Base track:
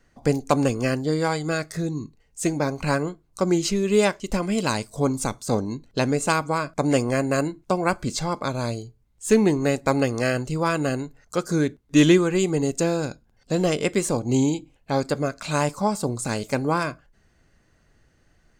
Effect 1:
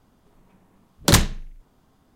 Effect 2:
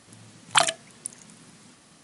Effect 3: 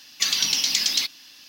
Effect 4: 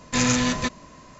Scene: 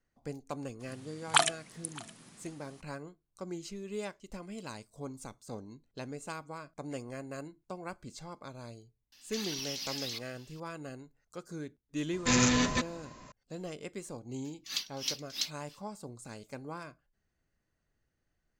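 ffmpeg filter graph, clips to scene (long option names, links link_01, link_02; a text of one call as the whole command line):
ffmpeg -i bed.wav -i cue0.wav -i cue1.wav -i cue2.wav -i cue3.wav -filter_complex "[3:a]asplit=2[link_01][link_02];[0:a]volume=-19.5dB[link_03];[2:a]aecho=1:1:614:0.075[link_04];[link_01]alimiter=limit=-17dB:level=0:latency=1:release=46[link_05];[link_02]aeval=exprs='val(0)*pow(10,-31*(0.5-0.5*cos(2*PI*3.1*n/s))/20)':channel_layout=same[link_06];[link_04]atrim=end=2.03,asetpts=PTS-STARTPTS,volume=-5dB,afade=type=in:duration=0.02,afade=type=out:start_time=2.01:duration=0.02,adelay=790[link_07];[link_05]atrim=end=1.48,asetpts=PTS-STARTPTS,volume=-12.5dB,afade=type=in:duration=0.004:curve=hsin,afade=type=out:start_time=1.476:duration=0.004:curve=hsin,adelay=9120[link_08];[4:a]atrim=end=1.19,asetpts=PTS-STARTPTS,volume=-4.5dB,afade=type=in:duration=0.004:curve=hsin,afade=type=out:start_time=1.186:duration=0.004:curve=hsin,adelay=12130[link_09];[link_06]atrim=end=1.48,asetpts=PTS-STARTPTS,volume=-9.5dB,afade=type=in:duration=0.02,afade=type=out:start_time=1.46:duration=0.02,adelay=636804S[link_10];[link_03][link_07][link_08][link_09][link_10]amix=inputs=5:normalize=0" out.wav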